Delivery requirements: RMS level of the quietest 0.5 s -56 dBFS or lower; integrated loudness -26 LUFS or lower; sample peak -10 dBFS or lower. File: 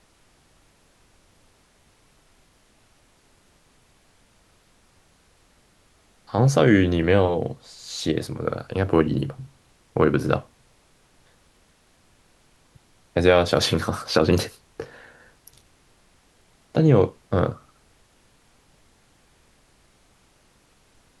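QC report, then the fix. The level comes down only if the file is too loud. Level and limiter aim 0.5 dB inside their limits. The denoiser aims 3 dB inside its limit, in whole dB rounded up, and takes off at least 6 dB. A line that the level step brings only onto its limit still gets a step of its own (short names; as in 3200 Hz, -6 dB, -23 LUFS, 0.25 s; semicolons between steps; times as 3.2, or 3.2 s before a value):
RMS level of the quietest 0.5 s -60 dBFS: OK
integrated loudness -22.0 LUFS: fail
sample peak -3.5 dBFS: fail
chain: gain -4.5 dB; limiter -10.5 dBFS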